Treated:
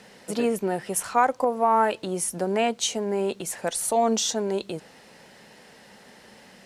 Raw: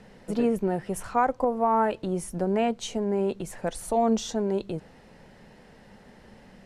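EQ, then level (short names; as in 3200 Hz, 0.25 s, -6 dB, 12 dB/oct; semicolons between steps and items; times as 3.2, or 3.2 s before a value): HPF 310 Hz 6 dB/oct; high shelf 2700 Hz +10 dB; +2.5 dB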